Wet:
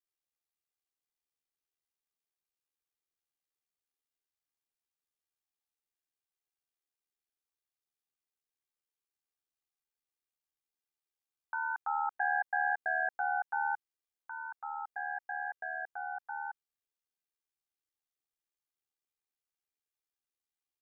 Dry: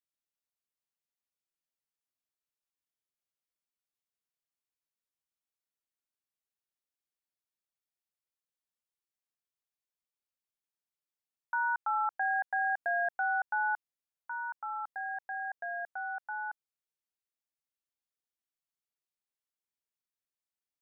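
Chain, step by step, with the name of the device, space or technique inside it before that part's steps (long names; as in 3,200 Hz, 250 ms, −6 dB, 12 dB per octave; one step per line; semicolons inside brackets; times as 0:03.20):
ring-modulated robot voice (ring modulation 38 Hz; comb filter 2.5 ms, depth 62%)
level −1 dB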